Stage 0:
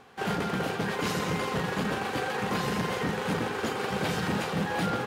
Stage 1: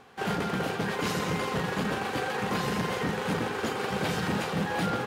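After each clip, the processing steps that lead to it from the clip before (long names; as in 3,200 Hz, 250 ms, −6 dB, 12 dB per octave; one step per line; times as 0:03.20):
no processing that can be heard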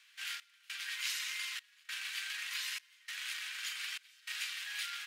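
inverse Chebyshev high-pass filter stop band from 600 Hz, stop band 60 dB
gate pattern "xxxx...xxxxx" 151 BPM −24 dB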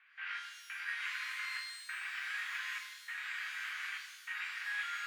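low-pass filter 2,000 Hz 24 dB per octave
low-shelf EQ 470 Hz −6.5 dB
reverb with rising layers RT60 1.1 s, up +12 semitones, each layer −8 dB, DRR 2.5 dB
level +5 dB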